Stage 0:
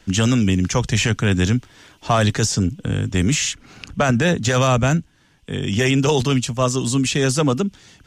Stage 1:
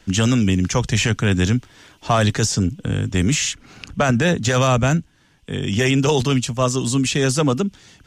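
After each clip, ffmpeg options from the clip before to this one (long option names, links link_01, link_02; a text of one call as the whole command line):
ffmpeg -i in.wav -af anull out.wav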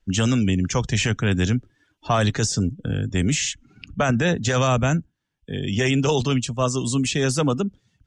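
ffmpeg -i in.wav -af "afftdn=noise_reduction=21:noise_floor=-37,volume=-3dB" out.wav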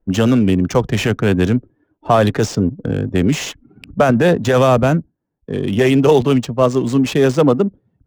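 ffmpeg -i in.wav -af "adynamicsmooth=sensitivity=5:basefreq=960,equalizer=frequency=460:width=0.45:gain=11" out.wav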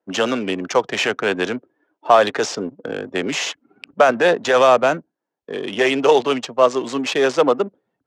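ffmpeg -i in.wav -af "highpass=530,lowpass=6600,volume=2.5dB" out.wav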